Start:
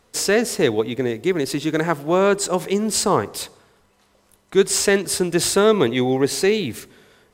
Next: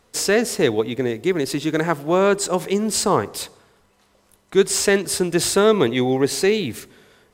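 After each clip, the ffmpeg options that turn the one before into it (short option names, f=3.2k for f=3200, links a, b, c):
-af "deesser=0.3"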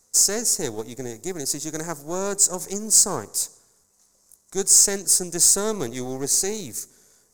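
-af "aeval=exprs='if(lt(val(0),0),0.447*val(0),val(0))':c=same,highshelf=f=4.5k:t=q:w=3:g=14,volume=-8.5dB"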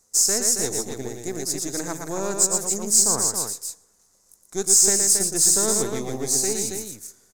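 -af "aecho=1:1:116.6|274.1:0.562|0.501,volume=-1.5dB"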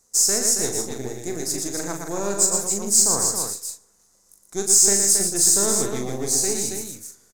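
-filter_complex "[0:a]asplit=2[a][b];[b]adelay=40,volume=-7dB[c];[a][c]amix=inputs=2:normalize=0"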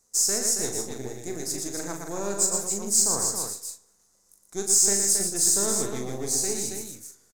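-filter_complex "[0:a]asplit=2[a][b];[b]adelay=227.4,volume=-29dB,highshelf=f=4k:g=-5.12[c];[a][c]amix=inputs=2:normalize=0,flanger=delay=8.9:depth=1.9:regen=-88:speed=0.61:shape=triangular"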